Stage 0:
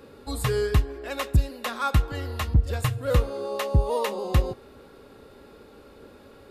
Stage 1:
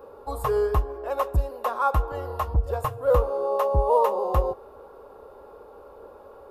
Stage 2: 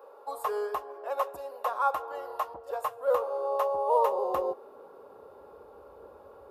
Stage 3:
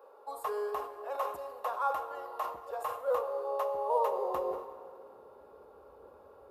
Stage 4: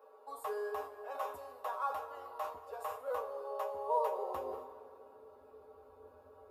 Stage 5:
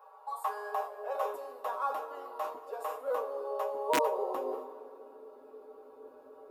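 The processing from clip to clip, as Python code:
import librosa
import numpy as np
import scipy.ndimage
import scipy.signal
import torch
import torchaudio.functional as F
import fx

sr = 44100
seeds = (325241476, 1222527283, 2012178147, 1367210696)

y1 = fx.graphic_eq(x, sr, hz=(125, 250, 500, 1000, 2000, 4000, 8000), db=(-9, -10, 7, 11, -11, -10, -9))
y2 = fx.filter_sweep_highpass(y1, sr, from_hz=600.0, to_hz=67.0, start_s=3.91, end_s=5.69, q=1.1)
y2 = y2 * librosa.db_to_amplitude(-4.5)
y3 = fx.rev_plate(y2, sr, seeds[0], rt60_s=2.3, hf_ratio=0.8, predelay_ms=0, drr_db=9.0)
y3 = fx.sustainer(y3, sr, db_per_s=90.0)
y3 = y3 * librosa.db_to_amplitude(-5.0)
y4 = fx.comb_fb(y3, sr, f0_hz=87.0, decay_s=0.17, harmonics='odd', damping=0.0, mix_pct=90)
y4 = y4 * librosa.db_to_amplitude(5.0)
y5 = (np.mod(10.0 ** (23.0 / 20.0) * y4 + 1.0, 2.0) - 1.0) / 10.0 ** (23.0 / 20.0)
y5 = fx.filter_sweep_highpass(y5, sr, from_hz=860.0, to_hz=290.0, start_s=0.56, end_s=1.65, q=2.4)
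y5 = y5 * librosa.db_to_amplitude(2.5)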